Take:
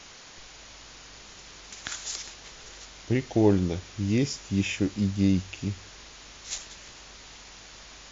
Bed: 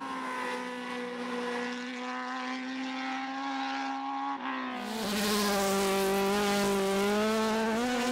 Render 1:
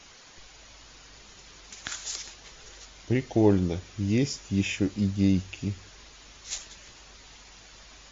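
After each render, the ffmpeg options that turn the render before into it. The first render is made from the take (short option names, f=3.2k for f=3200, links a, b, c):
-af "afftdn=nr=6:nf=-48"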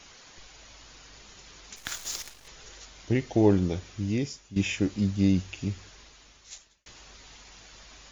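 -filter_complex "[0:a]asettb=1/sr,asplit=3[a][b][c];[a]atrim=end=1.764[d];[b]atrim=start=1.76:end=2.48,asetpts=PTS-STARTPTS,afade=t=in:d=0.004:c=qsin,afade=t=out:st=0.716:d=0.004:c=qsin,acrusher=bits=7:dc=4:mix=0:aa=0.000001[e];[c]atrim=start=2.476[f];[d][e]acrossfade=d=0.004:c1=hsin:c2=qsin[g];[g][f]acrossfade=d=0.004:c1=qsin:c2=hsin,asplit=3[h][i][j];[h]atrim=end=4.56,asetpts=PTS-STARTPTS,afade=t=out:st=3.88:d=0.68:silence=0.177828[k];[i]atrim=start=4.56:end=6.86,asetpts=PTS-STARTPTS,afade=t=in:d=0.004:c=hsin:silence=0.177828,afade=t=out:st=1.25:d=1.05[l];[j]atrim=start=6.86,asetpts=PTS-STARTPTS,afade=t=in:d=0.004:c=hsin[m];[k][l][m]concat=n=3:v=0:a=1"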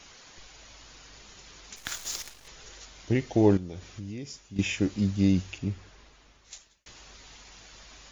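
-filter_complex "[0:a]asettb=1/sr,asplit=3[a][b][c];[a]atrim=end=3.574[d];[b]atrim=start=3.57:end=4.59,asetpts=PTS-STARTPTS,afade=t=in:d=0.004:c=qsin,afade=t=out:st=1.016:d=0.004:c=qsin,acompressor=threshold=-36dB:ratio=4:attack=3.2:release=140:knee=1:detection=peak[e];[c]atrim=start=4.586[f];[d][e]acrossfade=d=0.004:c1=hsin:c2=qsin[g];[g][f]acrossfade=d=0.004:c1=qsin:c2=hsin,asettb=1/sr,asplit=3[h][i][j];[h]atrim=end=5.584[k];[i]atrim=start=5.58:end=6.53,asetpts=PTS-STARTPTS,afade=t=in:d=0.004:c=qsin,afade=t=out:st=0.946:d=0.004:c=qsin,highshelf=f=3k:g=-10[l];[j]atrim=start=6.526[m];[k][l]acrossfade=d=0.004:c1=hsin:c2=qsin[n];[n][m]acrossfade=d=0.004:c1=qsin:c2=hsin"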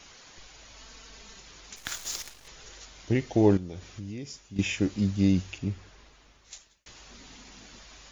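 -filter_complex "[0:a]asettb=1/sr,asplit=3[a][b][c];[a]atrim=end=0.764[d];[b]atrim=start=0.76:end=1.4,asetpts=PTS-STARTPTS,afade=t=in:d=0.004:c=qsin,afade=t=out:st=0.636:d=0.004:c=qsin,aecho=1:1:4.5:0.65,atrim=end_sample=28224[e];[c]atrim=start=1.396[f];[d][e]acrossfade=d=0.004:c1=hsin:c2=qsin[g];[g][f]acrossfade=d=0.004:c1=qsin:c2=hsin,asettb=1/sr,asplit=3[h][i][j];[h]atrim=end=7.114[k];[i]atrim=start=7.11:end=7.79,asetpts=PTS-STARTPTS,afade=t=in:d=0.004:c=qsin,afade=t=out:st=0.676:d=0.004:c=qsin,equalizer=f=240:t=o:w=0.88:g=12.5[l];[j]atrim=start=7.786[m];[k][l]acrossfade=d=0.004:c1=hsin:c2=qsin[n];[n][m]acrossfade=d=0.004:c1=qsin:c2=hsin"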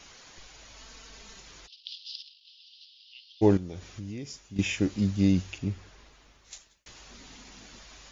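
-filter_complex "[0:a]asplit=3[a][b][c];[a]afade=t=out:st=1.66:d=0.02[d];[b]asuperpass=centerf=3800:order=12:qfactor=1.6,afade=t=in:st=1.66:d=0.02,afade=t=out:st=3.41:d=0.02[e];[c]afade=t=in:st=3.41:d=0.02[f];[d][e][f]amix=inputs=3:normalize=0"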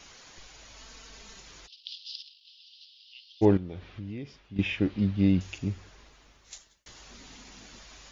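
-filter_complex "[0:a]asettb=1/sr,asplit=3[a][b][c];[a]atrim=end=3.454[d];[b]atrim=start=3.45:end=5.41,asetpts=PTS-STARTPTS,afade=t=in:d=0.004:c=qsin,afade=t=out:st=1.956:d=0.004:c=qsin,lowpass=f=3.7k:w=0.5412,lowpass=f=3.7k:w=1.3066[e];[c]atrim=start=5.406[f];[d][e]acrossfade=d=0.004:c1=hsin:c2=qsin[g];[g][f]acrossfade=d=0.004:c1=qsin:c2=hsin,asettb=1/sr,asplit=3[h][i][j];[h]atrim=end=6.544[k];[i]atrim=start=6.54:end=7.03,asetpts=PTS-STARTPTS,afade=t=in:d=0.004:c=qsin,afade=t=out:st=0.486:d=0.004:c=qsin,bandreject=f=2.5k:w=11[l];[j]atrim=start=7.026[m];[k][l]acrossfade=d=0.004:c1=hsin:c2=qsin[n];[n][m]acrossfade=d=0.004:c1=qsin:c2=hsin"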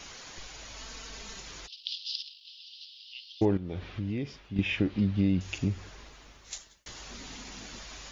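-filter_complex "[0:a]asplit=2[a][b];[b]alimiter=limit=-17.5dB:level=0:latency=1:release=381,volume=-1.5dB[c];[a][c]amix=inputs=2:normalize=0,acompressor=threshold=-25dB:ratio=2.5"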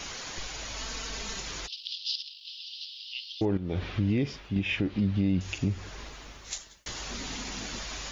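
-af "acontrast=79,alimiter=limit=-18.5dB:level=0:latency=1:release=336"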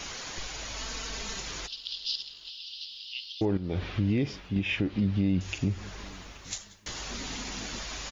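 -af "aecho=1:1:828|1656:0.0631|0.017"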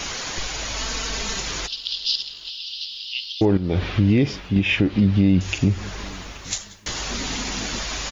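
-af "volume=9.5dB"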